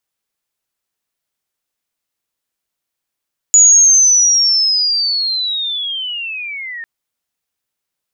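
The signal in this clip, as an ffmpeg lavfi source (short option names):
-f lavfi -i "aevalsrc='pow(10,(-3.5-21*t/3.3)/20)*sin(2*PI*(6900*t-5100*t*t/(2*3.3)))':d=3.3:s=44100"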